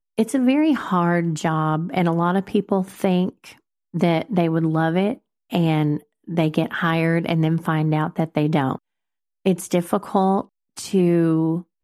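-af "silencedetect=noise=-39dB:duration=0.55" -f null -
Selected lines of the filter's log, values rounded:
silence_start: 8.77
silence_end: 9.45 | silence_duration: 0.69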